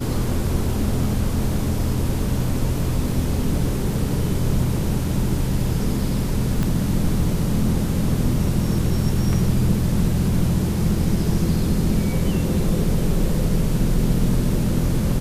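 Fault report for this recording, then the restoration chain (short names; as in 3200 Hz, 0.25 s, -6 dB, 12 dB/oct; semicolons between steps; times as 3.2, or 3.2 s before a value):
6.63 pop -11 dBFS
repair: de-click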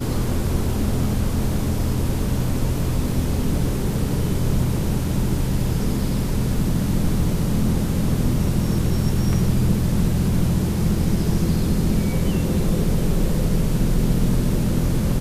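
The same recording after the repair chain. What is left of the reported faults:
6.63 pop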